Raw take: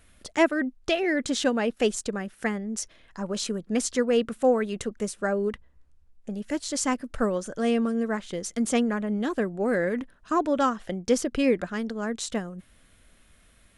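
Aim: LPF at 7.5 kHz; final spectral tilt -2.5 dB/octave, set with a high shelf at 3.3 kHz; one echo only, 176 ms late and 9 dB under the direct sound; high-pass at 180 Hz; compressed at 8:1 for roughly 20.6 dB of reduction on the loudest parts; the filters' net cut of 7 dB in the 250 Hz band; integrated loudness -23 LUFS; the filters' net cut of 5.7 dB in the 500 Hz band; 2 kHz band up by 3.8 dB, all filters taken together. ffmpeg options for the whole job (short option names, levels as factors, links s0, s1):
-af "highpass=180,lowpass=7500,equalizer=f=250:t=o:g=-5.5,equalizer=f=500:t=o:g=-5.5,equalizer=f=2000:t=o:g=3.5,highshelf=f=3300:g=5,acompressor=threshold=0.01:ratio=8,aecho=1:1:176:0.355,volume=10"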